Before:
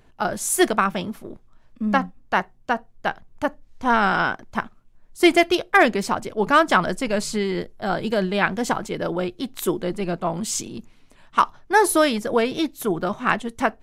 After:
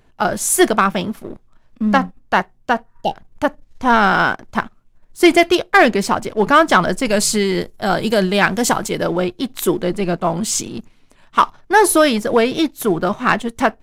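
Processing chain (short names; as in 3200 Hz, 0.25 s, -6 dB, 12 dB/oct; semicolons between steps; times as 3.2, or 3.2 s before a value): 2.88–3.12 spectral repair 920–2700 Hz before; 7.05–9.05 high shelf 5500 Hz +11 dB; sample leveller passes 1; gain +2.5 dB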